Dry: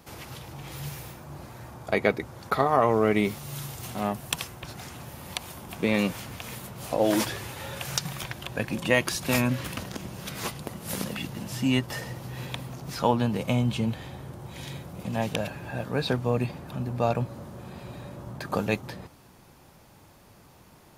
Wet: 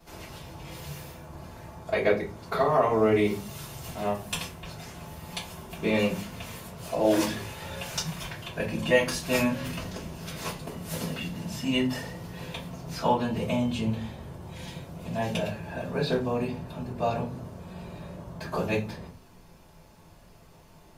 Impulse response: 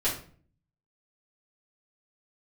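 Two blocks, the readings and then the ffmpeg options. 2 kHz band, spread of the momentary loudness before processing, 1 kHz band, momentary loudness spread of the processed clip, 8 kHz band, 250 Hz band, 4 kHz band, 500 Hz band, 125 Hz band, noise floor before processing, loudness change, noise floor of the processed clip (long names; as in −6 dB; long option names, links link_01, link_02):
−1.5 dB, 17 LU, −1.5 dB, 18 LU, −2.5 dB, −1.0 dB, −1.0 dB, +1.0 dB, −3.0 dB, −54 dBFS, −0.5 dB, −53 dBFS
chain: -filter_complex "[1:a]atrim=start_sample=2205,asetrate=66150,aresample=44100[link_01];[0:a][link_01]afir=irnorm=-1:irlink=0,volume=-7dB"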